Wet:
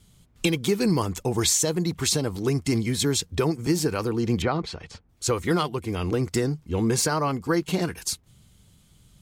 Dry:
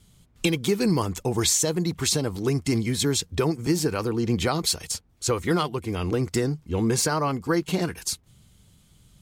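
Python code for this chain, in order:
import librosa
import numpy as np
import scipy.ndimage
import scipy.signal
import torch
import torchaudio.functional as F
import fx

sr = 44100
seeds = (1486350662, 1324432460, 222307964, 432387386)

y = fx.lowpass(x, sr, hz=2300.0, slope=12, at=(4.42, 5.09))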